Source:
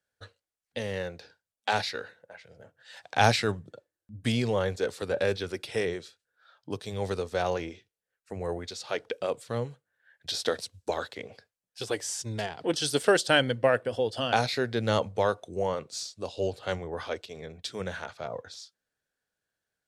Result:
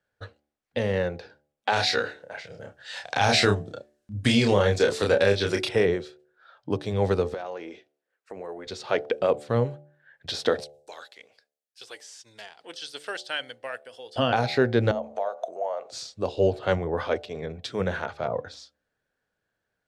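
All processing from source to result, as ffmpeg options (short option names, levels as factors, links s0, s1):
-filter_complex "[0:a]asettb=1/sr,asplit=3[s0][s1][s2];[s0]atrim=end=1.734[s3];[s1]atrim=start=1.73:end=5.69,asetpts=PTS-STARTPTS,afade=t=in:d=0.004:c=qsin,afade=t=out:st=3.956:d=0.004:c=qsin,equalizer=f=7100:t=o:w=2.7:g=12.5,asplit=2[s4][s5];[s5]adelay=30,volume=0.631[s6];[s4][s6]amix=inputs=2:normalize=0,atrim=end_sample=174636[s7];[s2]atrim=start=5.686[s8];[s3][s7]acrossfade=d=0.004:c1=hsin:c2=qsin[s9];[s9][s8]acrossfade=d=0.004:c1=qsin:c2=hsin,asettb=1/sr,asplit=3[s10][s11][s12];[s10]atrim=end=7.344[s13];[s11]atrim=start=7.34:end=8.67,asetpts=PTS-STARTPTS,afade=t=in:d=0.004:c=qsin,afade=t=out:st=1.326:d=0.004:c=qsin,highpass=320,acompressor=threshold=0.00708:ratio=3:attack=3.2:release=140:knee=1:detection=peak[s14];[s12]atrim=start=8.666[s15];[s13][s14]acrossfade=d=0.004:c1=hsin:c2=qsin[s16];[s16][s15]acrossfade=d=0.004:c1=qsin:c2=hsin,asettb=1/sr,asplit=3[s17][s18][s19];[s17]atrim=end=10.644[s20];[s18]atrim=start=10.64:end=14.16,asetpts=PTS-STARTPTS,afade=t=in:d=0.004:c=qsin,afade=t=out:st=3.516:d=0.004:c=qsin,acrossover=split=5000[s21][s22];[s22]acompressor=threshold=0.00355:ratio=4:attack=1:release=60[s23];[s21][s23]amix=inputs=2:normalize=0,aderivative[s24];[s19]atrim=start=14.156[s25];[s20][s24]acrossfade=d=0.004:c1=hsin:c2=qsin[s26];[s26][s25]acrossfade=d=0.004:c1=qsin:c2=hsin,asettb=1/sr,asplit=3[s27][s28][s29];[s27]atrim=end=14.914[s30];[s28]atrim=start=14.91:end=15.91,asetpts=PTS-STARTPTS,afade=t=in:d=0.004:c=qsin,afade=t=out:st=0.996:d=0.004:c=qsin,equalizer=f=6600:t=o:w=0.22:g=8.5,acompressor=threshold=0.00794:ratio=5:attack=3.2:release=140:knee=1:detection=peak,highpass=f=660:t=q:w=6.9[s31];[s29]atrim=start=15.906[s32];[s30][s31]acrossfade=d=0.004:c1=hsin:c2=qsin[s33];[s33][s32]acrossfade=d=0.004:c1=qsin:c2=hsin,lowpass=f=1700:p=1,bandreject=f=73.77:t=h:w=4,bandreject=f=147.54:t=h:w=4,bandreject=f=221.31:t=h:w=4,bandreject=f=295.08:t=h:w=4,bandreject=f=368.85:t=h:w=4,bandreject=f=442.62:t=h:w=4,bandreject=f=516.39:t=h:w=4,bandreject=f=590.16:t=h:w=4,bandreject=f=663.93:t=h:w=4,bandreject=f=737.7:t=h:w=4,bandreject=f=811.47:t=h:w=4,alimiter=limit=0.126:level=0:latency=1:release=204,volume=2.66"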